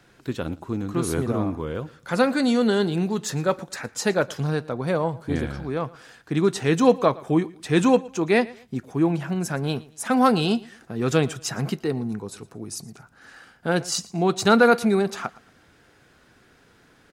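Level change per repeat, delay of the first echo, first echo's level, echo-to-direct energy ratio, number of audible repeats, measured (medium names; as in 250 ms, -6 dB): -10.5 dB, 115 ms, -21.5 dB, -21.0 dB, 2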